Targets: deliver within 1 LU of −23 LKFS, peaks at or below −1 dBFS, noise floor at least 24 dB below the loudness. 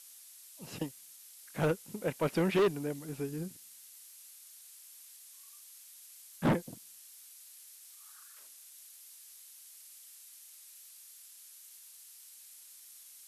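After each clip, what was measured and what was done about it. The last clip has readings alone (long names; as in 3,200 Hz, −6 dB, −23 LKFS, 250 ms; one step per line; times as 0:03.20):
share of clipped samples 0.6%; peaks flattened at −23.0 dBFS; background noise floor −55 dBFS; target noise floor −58 dBFS; integrated loudness −34.0 LKFS; sample peak −23.0 dBFS; target loudness −23.0 LKFS
→ clipped peaks rebuilt −23 dBFS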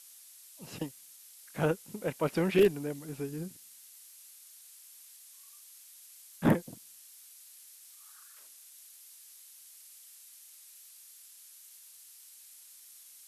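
share of clipped samples 0.0%; background noise floor −55 dBFS; target noise floor −56 dBFS
→ broadband denoise 6 dB, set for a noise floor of −55 dBFS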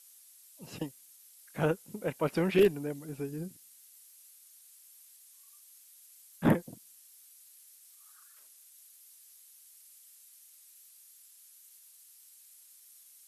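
background noise floor −58 dBFS; integrated loudness −31.5 LKFS; sample peak −14.0 dBFS; target loudness −23.0 LKFS
→ level +8.5 dB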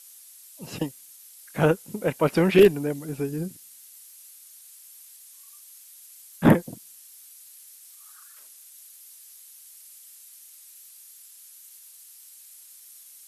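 integrated loudness −23.0 LKFS; sample peak −5.5 dBFS; background noise floor −50 dBFS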